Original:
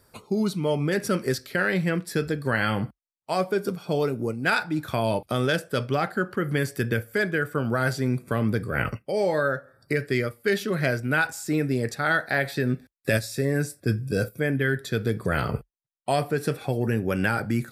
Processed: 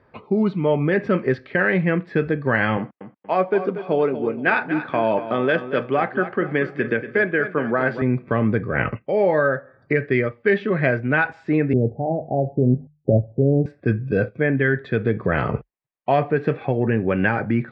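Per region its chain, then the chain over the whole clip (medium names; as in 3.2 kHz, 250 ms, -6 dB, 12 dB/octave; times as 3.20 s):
2.77–8.02 s: high-pass 210 Hz + feedback delay 236 ms, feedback 35%, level -11.5 dB
11.73–13.66 s: steep low-pass 820 Hz 72 dB/octave + peaking EQ 71 Hz +8 dB 2.4 oct + hum notches 50/100/150 Hz
whole clip: low-pass 2.5 kHz 24 dB/octave; bass shelf 74 Hz -10 dB; band-stop 1.4 kHz, Q 9.9; trim +6 dB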